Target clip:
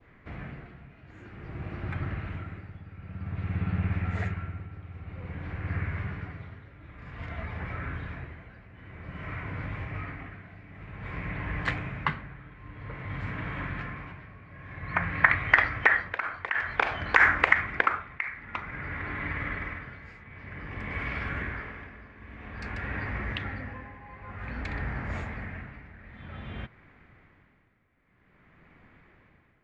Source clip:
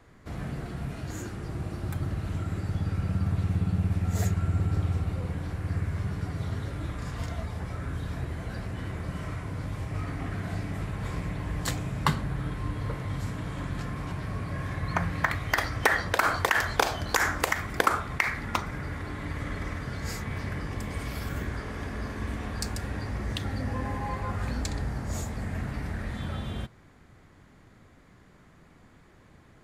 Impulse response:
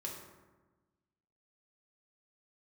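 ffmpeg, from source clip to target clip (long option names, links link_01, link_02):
-af "tremolo=f=0.52:d=0.82,adynamicequalizer=threshold=0.00447:dfrequency=1600:dqfactor=0.8:tfrequency=1600:tqfactor=0.8:attack=5:release=100:ratio=0.375:range=2.5:mode=boostabove:tftype=bell,lowpass=frequency=2300:width_type=q:width=2.4,volume=-2dB"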